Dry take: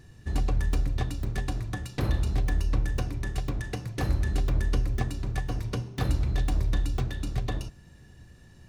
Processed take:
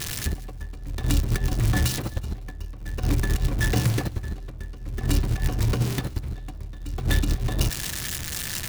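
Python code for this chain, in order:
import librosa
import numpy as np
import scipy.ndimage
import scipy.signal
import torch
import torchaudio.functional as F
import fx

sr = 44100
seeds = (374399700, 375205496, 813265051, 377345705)

p1 = x + 0.5 * 10.0 ** (-26.0 / 20.0) * np.diff(np.sign(x), prepend=np.sign(x[:1]))
p2 = fx.high_shelf(p1, sr, hz=7200.0, db=-10.0)
p3 = fx.over_compress(p2, sr, threshold_db=-32.0, ratio=-0.5)
p4 = p3 + fx.echo_feedback(p3, sr, ms=179, feedback_pct=27, wet_db=-19.5, dry=0)
y = p4 * 10.0 ** (8.0 / 20.0)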